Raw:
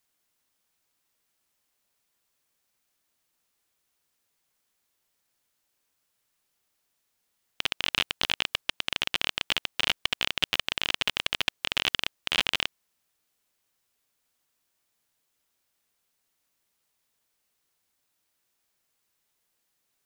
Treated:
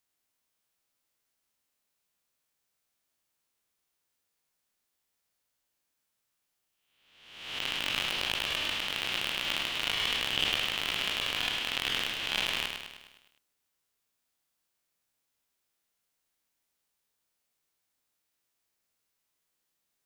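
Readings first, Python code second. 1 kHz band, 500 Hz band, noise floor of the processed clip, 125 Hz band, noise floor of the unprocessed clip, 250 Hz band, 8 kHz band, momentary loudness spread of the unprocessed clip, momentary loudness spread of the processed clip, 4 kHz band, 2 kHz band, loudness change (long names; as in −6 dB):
−1.5 dB, −1.5 dB, −81 dBFS, −1.5 dB, −77 dBFS, −1.0 dB, −1.0 dB, 4 LU, 6 LU, −2.0 dB, −2.0 dB, −2.0 dB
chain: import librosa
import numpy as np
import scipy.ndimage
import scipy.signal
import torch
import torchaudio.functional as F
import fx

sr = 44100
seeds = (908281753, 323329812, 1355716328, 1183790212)

p1 = fx.spec_swells(x, sr, rise_s=0.97)
p2 = fx.transient(p1, sr, attack_db=-1, sustain_db=7)
p3 = p2 + fx.echo_feedback(p2, sr, ms=103, feedback_pct=54, wet_db=-5.5, dry=0)
y = p3 * 10.0 ** (-8.5 / 20.0)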